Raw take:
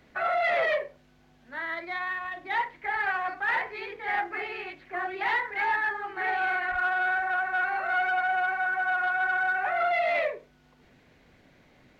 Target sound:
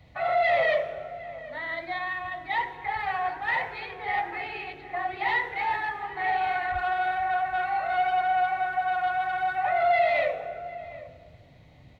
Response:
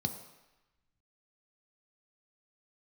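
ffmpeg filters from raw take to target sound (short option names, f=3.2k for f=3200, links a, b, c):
-filter_complex "[0:a]asplit=2[a][b];[b]adelay=758,volume=-16dB,highshelf=f=4k:g=-17.1[c];[a][c]amix=inputs=2:normalize=0,asplit=2[d][e];[1:a]atrim=start_sample=2205,asetrate=28224,aresample=44100[f];[e][f]afir=irnorm=-1:irlink=0,volume=-6dB[g];[d][g]amix=inputs=2:normalize=0"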